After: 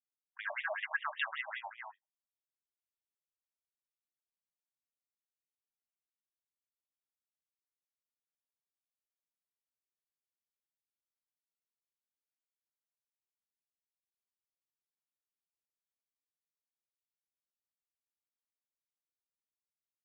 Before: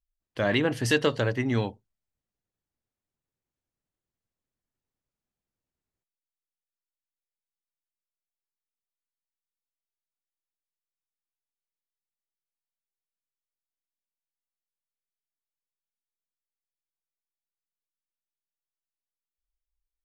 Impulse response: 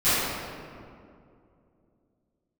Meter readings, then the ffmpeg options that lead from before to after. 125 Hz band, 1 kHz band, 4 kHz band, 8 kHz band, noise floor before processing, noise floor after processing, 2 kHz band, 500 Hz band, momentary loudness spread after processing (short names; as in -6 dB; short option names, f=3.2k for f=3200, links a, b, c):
under -40 dB, -6.0 dB, -13.0 dB, under -30 dB, under -85 dBFS, under -85 dBFS, -5.5 dB, -20.5 dB, 14 LU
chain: -af "aecho=1:1:172|282.8:0.447|0.562,afwtdn=0.00562,afftfilt=real='re*between(b*sr/1024,810*pow(2700/810,0.5+0.5*sin(2*PI*5.2*pts/sr))/1.41,810*pow(2700/810,0.5+0.5*sin(2*PI*5.2*pts/sr))*1.41)':imag='im*between(b*sr/1024,810*pow(2700/810,0.5+0.5*sin(2*PI*5.2*pts/sr))/1.41,810*pow(2700/810,0.5+0.5*sin(2*PI*5.2*pts/sr))*1.41)':win_size=1024:overlap=0.75,volume=-3.5dB"